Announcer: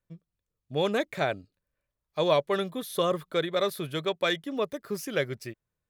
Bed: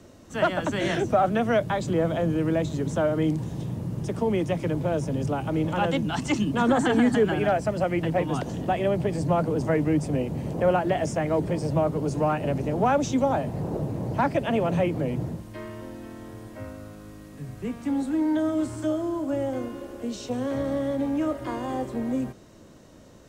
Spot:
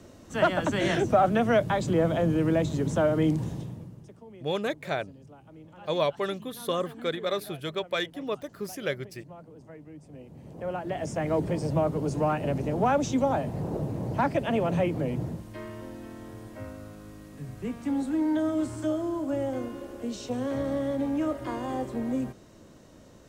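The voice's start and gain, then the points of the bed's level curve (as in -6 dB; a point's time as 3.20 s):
3.70 s, -2.5 dB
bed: 3.48 s 0 dB
4.21 s -23.5 dB
9.95 s -23.5 dB
11.29 s -2 dB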